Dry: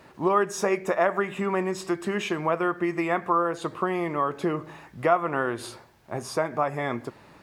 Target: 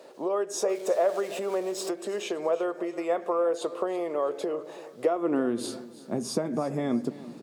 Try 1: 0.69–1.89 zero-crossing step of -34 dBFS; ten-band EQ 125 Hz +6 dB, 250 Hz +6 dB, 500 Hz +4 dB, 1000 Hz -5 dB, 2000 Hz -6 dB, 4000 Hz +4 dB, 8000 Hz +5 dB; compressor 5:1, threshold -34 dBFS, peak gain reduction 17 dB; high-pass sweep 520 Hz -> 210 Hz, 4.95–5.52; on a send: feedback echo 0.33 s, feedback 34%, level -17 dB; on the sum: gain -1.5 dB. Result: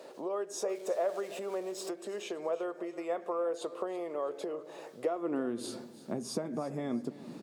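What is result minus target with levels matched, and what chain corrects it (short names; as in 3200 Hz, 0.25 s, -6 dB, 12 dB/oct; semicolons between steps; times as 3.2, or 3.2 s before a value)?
compressor: peak gain reduction +7 dB
0.69–1.89 zero-crossing step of -34 dBFS; ten-band EQ 125 Hz +6 dB, 250 Hz +6 dB, 500 Hz +4 dB, 1000 Hz -5 dB, 2000 Hz -6 dB, 4000 Hz +4 dB, 8000 Hz +5 dB; compressor 5:1, threshold -25 dBFS, peak gain reduction 10 dB; high-pass sweep 520 Hz -> 210 Hz, 4.95–5.52; on a send: feedback echo 0.33 s, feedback 34%, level -17 dB; on the sum: gain -1.5 dB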